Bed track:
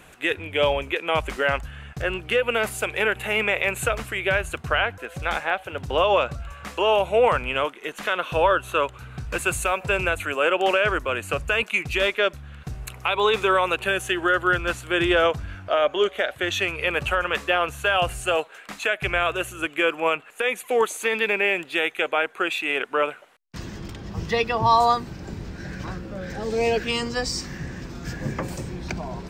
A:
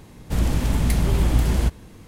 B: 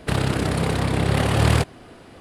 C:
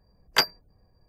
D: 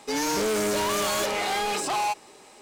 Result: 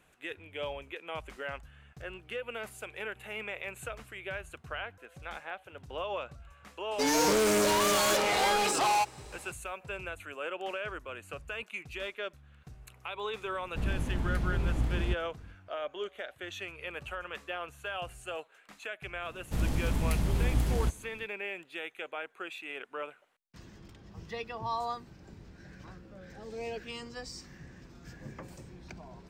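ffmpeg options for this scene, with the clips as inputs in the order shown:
ffmpeg -i bed.wav -i cue0.wav -i cue1.wav -i cue2.wav -i cue3.wav -filter_complex "[1:a]asplit=2[link_01][link_02];[0:a]volume=-16.5dB[link_03];[link_01]lowpass=frequency=2400:poles=1[link_04];[4:a]atrim=end=2.61,asetpts=PTS-STARTPTS,volume=-0.5dB,afade=type=in:duration=0.004:curve=hsin,afade=type=out:start_time=2.606:duration=0.004:curve=hsin,adelay=6910[link_05];[link_04]atrim=end=2.07,asetpts=PTS-STARTPTS,volume=-11dB,afade=type=in:duration=0.004:curve=hsin,afade=type=out:start_time=2.066:duration=0.004:curve=hsin,adelay=13450[link_06];[link_02]atrim=end=2.07,asetpts=PTS-STARTPTS,volume=-9dB,afade=type=in:duration=0.05,afade=type=out:start_time=2.02:duration=0.05,adelay=19210[link_07];[link_03][link_05][link_06][link_07]amix=inputs=4:normalize=0" out.wav

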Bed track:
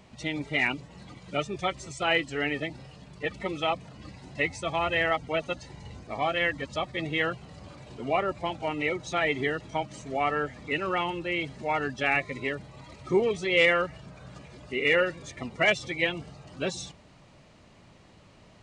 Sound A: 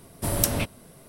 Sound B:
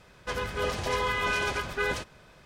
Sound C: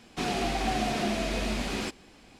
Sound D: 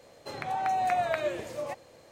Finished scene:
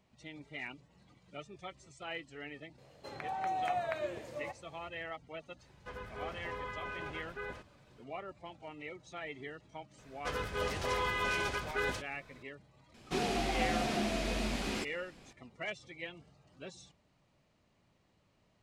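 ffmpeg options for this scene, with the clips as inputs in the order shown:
ffmpeg -i bed.wav -i cue0.wav -i cue1.wav -i cue2.wav -i cue3.wav -filter_complex "[2:a]asplit=2[link_01][link_02];[0:a]volume=-17dB[link_03];[4:a]highshelf=frequency=7100:gain=-6.5[link_04];[link_01]acrossover=split=2500[link_05][link_06];[link_06]acompressor=threshold=-51dB:ratio=4:attack=1:release=60[link_07];[link_05][link_07]amix=inputs=2:normalize=0[link_08];[link_04]atrim=end=2.11,asetpts=PTS-STARTPTS,volume=-7dB,afade=type=in:duration=0.004:curve=hsin,afade=type=out:start_time=2.106:duration=0.004:curve=hsin,adelay=2780[link_09];[link_08]atrim=end=2.45,asetpts=PTS-STARTPTS,volume=-13dB,afade=type=in:duration=0.004:curve=hsin,afade=type=out:start_time=2.446:duration=0.004:curve=hsin,adelay=5590[link_10];[link_02]atrim=end=2.45,asetpts=PTS-STARTPTS,volume=-5.5dB,afade=type=in:duration=0.004:curve=hsin,afade=type=out:start_time=2.446:duration=0.004:curve=hsin,adelay=9980[link_11];[3:a]atrim=end=2.39,asetpts=PTS-STARTPTS,volume=-4.5dB,afade=type=in:duration=0.004:curve=hsin,afade=type=out:start_time=2.386:duration=0.004:curve=hsin,adelay=12940[link_12];[link_03][link_09][link_10][link_11][link_12]amix=inputs=5:normalize=0" out.wav

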